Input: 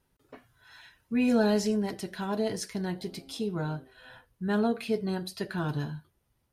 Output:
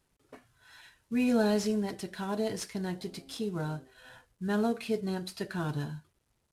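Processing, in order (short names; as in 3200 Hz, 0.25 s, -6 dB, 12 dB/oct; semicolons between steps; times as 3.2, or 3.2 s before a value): CVSD 64 kbps; gain -2 dB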